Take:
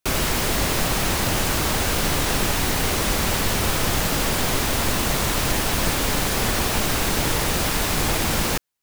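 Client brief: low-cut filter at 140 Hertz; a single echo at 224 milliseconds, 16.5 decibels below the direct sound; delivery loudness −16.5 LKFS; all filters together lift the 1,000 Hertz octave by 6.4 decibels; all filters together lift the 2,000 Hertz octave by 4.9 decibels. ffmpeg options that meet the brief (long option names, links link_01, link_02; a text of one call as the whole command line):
ffmpeg -i in.wav -af "highpass=140,equalizer=frequency=1000:width_type=o:gain=7,equalizer=frequency=2000:width_type=o:gain=4,aecho=1:1:224:0.15,volume=2.5dB" out.wav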